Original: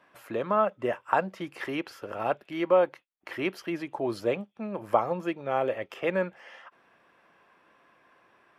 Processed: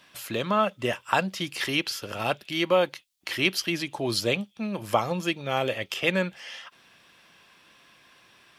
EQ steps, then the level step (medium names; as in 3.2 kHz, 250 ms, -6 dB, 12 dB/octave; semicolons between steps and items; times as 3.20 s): tone controls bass +11 dB, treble +14 dB; peaking EQ 3.5 kHz +13 dB 1.7 oct; treble shelf 5.4 kHz +4 dB; -2.0 dB